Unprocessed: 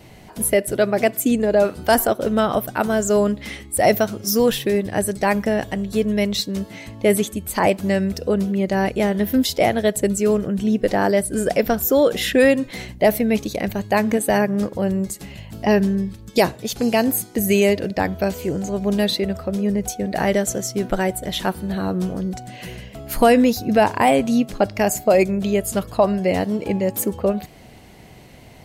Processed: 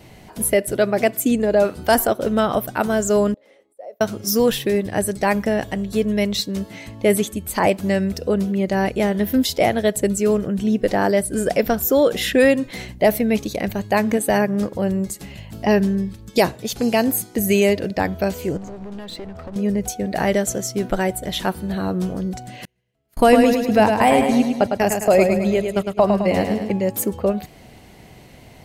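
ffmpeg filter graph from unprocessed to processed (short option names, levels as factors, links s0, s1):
-filter_complex "[0:a]asettb=1/sr,asplit=3[s0][s1][s2];[s0]atrim=end=3.344[s3];[s1]atrim=start=3.34:end=4.01,asetpts=PTS-STARTPTS,afade=t=in:d=0.004:c=qsin,afade=t=out:st=0.666:d=0.004:c=qsin,aemphasis=mode=production:type=riaa,acompressor=threshold=0.0794:ratio=10:attack=3.2:release=140:knee=1:detection=peak,bandpass=f=530:t=q:w=6.1[s4];[s2]atrim=start=4.006[s5];[s3][s4]acrossfade=d=0.004:c1=hsin:c2=qsin[s6];[s6][s5]acrossfade=d=0.004:c1=qsin:c2=hsin,asettb=1/sr,asplit=3[s7][s8][s9];[s7]atrim=end=18.574[s10];[s8]atrim=start=18.57:end=19.56,asetpts=PTS-STARTPTS,afade=t=in:d=0.004:c=qsin,afade=t=out:st=0.986:d=0.004:c=qsin,aemphasis=mode=reproduction:type=50fm,acompressor=threshold=0.0447:ratio=5:attack=3.2:release=140:knee=1:detection=peak,aeval=exprs='clip(val(0),-1,0.015)':c=same[s11];[s9]atrim=start=19.556[s12];[s10][s11]acrossfade=d=0.004:c1=hsin:c2=qsin[s13];[s13][s12]acrossfade=d=0.004:c1=qsin:c2=hsin,asettb=1/sr,asplit=3[s14][s15][s16];[s14]atrim=end=22.654[s17];[s15]atrim=start=22.65:end=26.71,asetpts=PTS-STARTPTS,afade=t=in:d=0.004:c=qsin,afade=t=out:st=4.056:d=0.004:c=qsin,agate=range=0.0112:threshold=0.0708:ratio=16:release=100:detection=peak,aecho=1:1:106|212|318|424|530|636|742:0.531|0.276|0.144|0.0746|0.0388|0.0202|0.0105,atrim=end_sample=179046[s18];[s16]atrim=start=26.706[s19];[s17][s18]acrossfade=d=0.004:c1=hsin:c2=qsin[s20];[s20][s19]acrossfade=d=0.004:c1=qsin:c2=hsin"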